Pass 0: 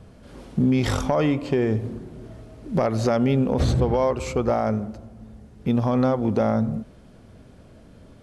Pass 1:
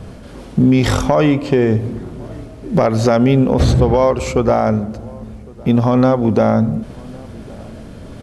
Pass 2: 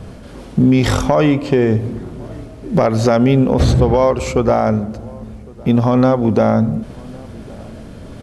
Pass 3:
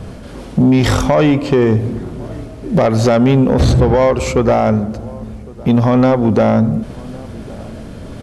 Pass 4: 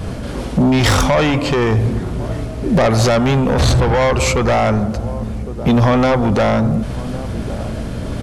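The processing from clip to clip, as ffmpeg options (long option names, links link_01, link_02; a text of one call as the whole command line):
ffmpeg -i in.wav -filter_complex "[0:a]areverse,acompressor=mode=upward:threshold=-33dB:ratio=2.5,areverse,asplit=2[link_01][link_02];[link_02]adelay=1108,volume=-24dB,highshelf=frequency=4000:gain=-24.9[link_03];[link_01][link_03]amix=inputs=2:normalize=0,volume=8dB" out.wav
ffmpeg -i in.wav -af anull out.wav
ffmpeg -i in.wav -af "asoftclip=type=tanh:threshold=-8dB,volume=3.5dB" out.wav
ffmpeg -i in.wav -af "apsyclip=14.5dB,adynamicequalizer=threshold=0.126:dfrequency=300:dqfactor=0.76:tfrequency=300:tqfactor=0.76:attack=5:release=100:ratio=0.375:range=3.5:mode=cutabove:tftype=bell,aeval=exprs='val(0)+0.0891*(sin(2*PI*60*n/s)+sin(2*PI*2*60*n/s)/2+sin(2*PI*3*60*n/s)/3+sin(2*PI*4*60*n/s)/4+sin(2*PI*5*60*n/s)/5)':channel_layout=same,volume=-8dB" out.wav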